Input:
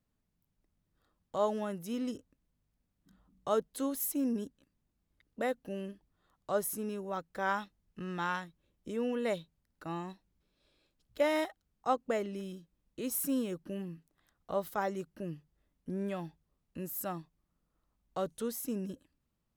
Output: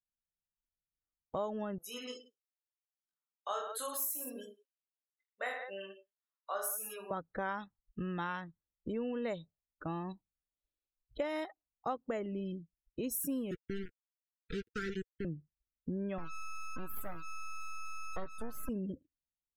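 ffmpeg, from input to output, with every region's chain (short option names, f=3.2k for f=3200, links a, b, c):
-filter_complex "[0:a]asettb=1/sr,asplit=3[a][b][c];[a]atrim=end=1.784[d];[b]atrim=start=1.78:end=7.11,asetpts=PTS-STARTPTS,afade=t=in:d=0.004:c=qsin,afade=t=out:st=5.326:d=0.004:c=qsin,highpass=1k,aecho=1:1:20|46|79.8|123.7|180.9:0.794|0.631|0.501|0.398|0.316,atrim=end_sample=235053[e];[c]atrim=start=7.106[f];[d][e]acrossfade=d=0.004:c1=hsin:c2=qsin[g];[g][f]acrossfade=d=0.004:c1=qsin:c2=hsin,asettb=1/sr,asplit=3[h][i][j];[h]atrim=end=13.514[k];[i]atrim=start=13.51:end=15.25,asetpts=PTS-STARTPTS,afade=t=in:d=0.004:c=qsin,afade=t=out:st=1.736:d=0.004:c=qsin,aeval=exprs='val(0)*gte(abs(val(0)),0.015)':c=same,asuperstop=centerf=800:order=20:qfactor=0.92[l];[j]atrim=start=15.246[m];[k][l]acrossfade=d=0.004:c1=hsin:c2=qsin[n];[n][m]acrossfade=d=0.004:c1=qsin:c2=hsin,asettb=1/sr,asplit=3[o][p][q];[o]atrim=end=16.184[r];[p]atrim=start=16.18:end=18.69,asetpts=PTS-STARTPTS,afade=t=in:d=0.004:c=qsin,afade=t=out:st=2.506:d=0.004:c=qsin,equalizer=f=120:w=2.1:g=-12.5,aeval=exprs='val(0)+0.00708*sin(2*PI*1300*n/s)':c=same,acrusher=bits=5:dc=4:mix=0:aa=0.000001[s];[q]atrim=start=18.686[t];[r][s]acrossfade=d=0.004:c1=hsin:c2=qsin[u];[u][t]acrossfade=d=0.004:c1=qsin:c2=hsin,afftdn=nr=34:nf=-50,lowshelf=f=79:g=11.5,acompressor=threshold=-39dB:ratio=4,volume=4dB"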